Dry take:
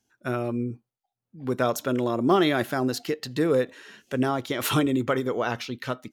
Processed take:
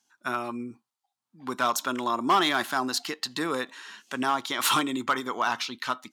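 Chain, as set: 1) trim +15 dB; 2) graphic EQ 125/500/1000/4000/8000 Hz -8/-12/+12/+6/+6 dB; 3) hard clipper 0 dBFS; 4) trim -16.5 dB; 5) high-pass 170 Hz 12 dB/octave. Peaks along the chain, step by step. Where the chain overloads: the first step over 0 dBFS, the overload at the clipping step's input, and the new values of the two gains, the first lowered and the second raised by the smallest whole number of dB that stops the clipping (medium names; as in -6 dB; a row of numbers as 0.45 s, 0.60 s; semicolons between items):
+6.0 dBFS, +7.5 dBFS, 0.0 dBFS, -16.5 dBFS, -12.5 dBFS; step 1, 7.5 dB; step 1 +7 dB, step 4 -8.5 dB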